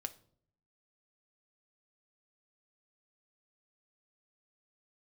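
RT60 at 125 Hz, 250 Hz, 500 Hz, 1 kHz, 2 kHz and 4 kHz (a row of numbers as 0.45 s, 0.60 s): 0.90 s, 0.85 s, 0.70 s, 0.50 s, 0.40 s, 0.40 s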